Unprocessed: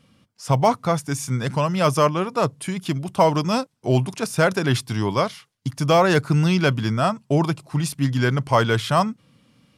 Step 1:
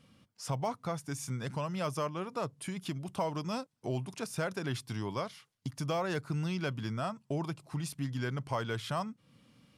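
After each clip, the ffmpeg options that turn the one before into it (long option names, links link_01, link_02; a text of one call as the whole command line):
ffmpeg -i in.wav -af "acompressor=threshold=-35dB:ratio=2,volume=-5dB" out.wav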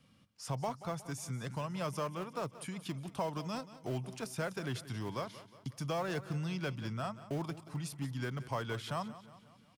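ffmpeg -i in.wav -filter_complex "[0:a]acrossover=split=390|410|3400[link_01][link_02][link_03][link_04];[link_02]acrusher=bits=7:mix=0:aa=0.000001[link_05];[link_01][link_05][link_03][link_04]amix=inputs=4:normalize=0,aecho=1:1:181|362|543|724|905:0.168|0.0856|0.0437|0.0223|0.0114,volume=-3dB" out.wav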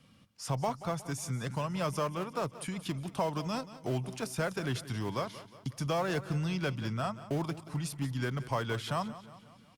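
ffmpeg -i in.wav -af "volume=4.5dB" -ar 48000 -c:a libopus -b:a 64k out.opus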